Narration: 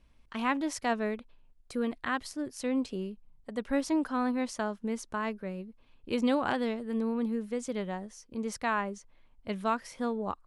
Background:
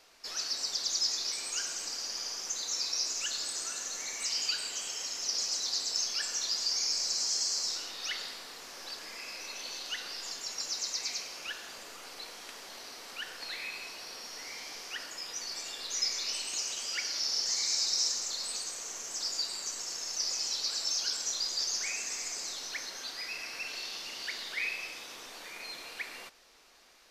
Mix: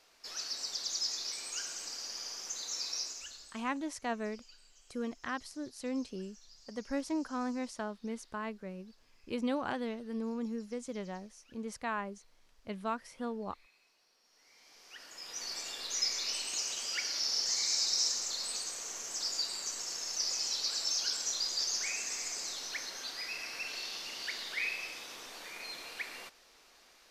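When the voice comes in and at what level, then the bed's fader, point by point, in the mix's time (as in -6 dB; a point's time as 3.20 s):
3.20 s, -6.0 dB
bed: 2.98 s -4.5 dB
3.78 s -27 dB
14.21 s -27 dB
15.45 s -1 dB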